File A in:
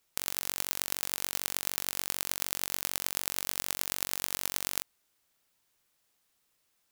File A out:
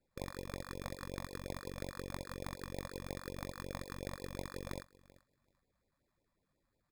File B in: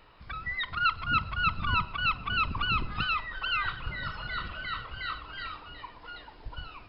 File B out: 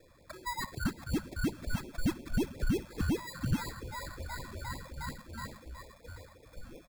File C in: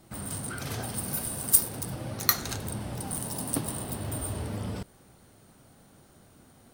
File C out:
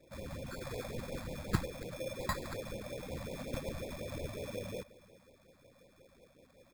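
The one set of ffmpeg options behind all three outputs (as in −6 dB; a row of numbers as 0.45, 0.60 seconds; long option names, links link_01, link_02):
-filter_complex "[0:a]asplit=3[link_01][link_02][link_03];[link_01]bandpass=frequency=530:width_type=q:width=8,volume=0dB[link_04];[link_02]bandpass=frequency=1840:width_type=q:width=8,volume=-6dB[link_05];[link_03]bandpass=frequency=2480:width_type=q:width=8,volume=-9dB[link_06];[link_04][link_05][link_06]amix=inputs=3:normalize=0,asoftclip=type=tanh:threshold=-37.5dB,aemphasis=mode=production:type=50kf,acrusher=samples=15:mix=1:aa=0.000001,lowshelf=frequency=210:gain=11,aecho=1:1:386|772:0.0891|0.0143,afftfilt=real='re*(1-between(b*sr/1024,350*pow(1500/350,0.5+0.5*sin(2*PI*5.5*pts/sr))/1.41,350*pow(1500/350,0.5+0.5*sin(2*PI*5.5*pts/sr))*1.41))':imag='im*(1-between(b*sr/1024,350*pow(1500/350,0.5+0.5*sin(2*PI*5.5*pts/sr))/1.41,350*pow(1500/350,0.5+0.5*sin(2*PI*5.5*pts/sr))*1.41))':win_size=1024:overlap=0.75,volume=7.5dB"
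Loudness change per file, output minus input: −13.5, −6.5, −12.0 LU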